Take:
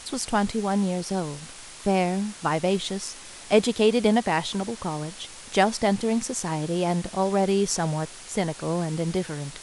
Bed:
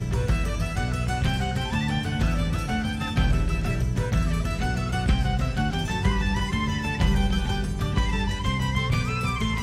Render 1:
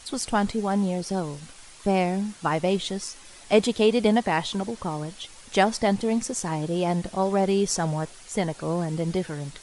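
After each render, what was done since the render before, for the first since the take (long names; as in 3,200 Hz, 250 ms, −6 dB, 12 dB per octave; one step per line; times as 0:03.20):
broadband denoise 7 dB, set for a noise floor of −43 dBFS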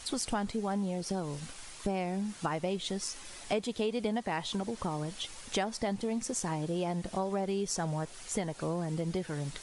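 downward compressor 4 to 1, threshold −31 dBFS, peak gain reduction 15 dB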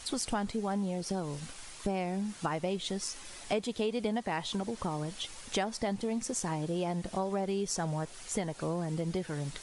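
no processing that can be heard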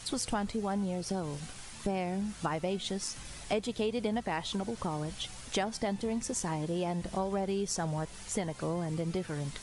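mix in bed −29 dB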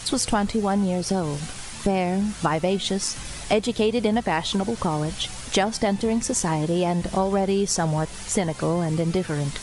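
level +10.5 dB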